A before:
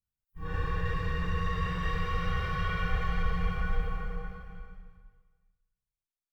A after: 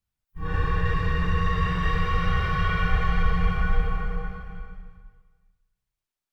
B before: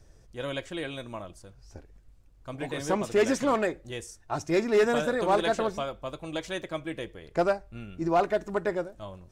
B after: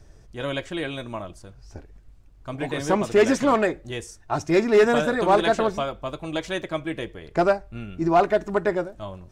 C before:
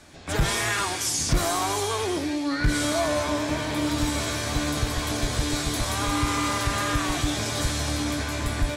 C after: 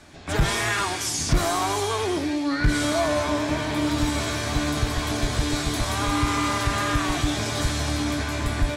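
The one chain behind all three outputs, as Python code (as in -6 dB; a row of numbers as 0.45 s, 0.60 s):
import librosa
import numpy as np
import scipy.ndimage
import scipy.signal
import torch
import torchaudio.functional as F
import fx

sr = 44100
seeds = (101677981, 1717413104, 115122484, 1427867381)

y = fx.high_shelf(x, sr, hz=5700.0, db=-5.5)
y = fx.notch(y, sr, hz=510.0, q=12.0)
y = y * 10.0 ** (-24 / 20.0) / np.sqrt(np.mean(np.square(y)))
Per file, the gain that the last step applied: +7.0 dB, +6.0 dB, +2.0 dB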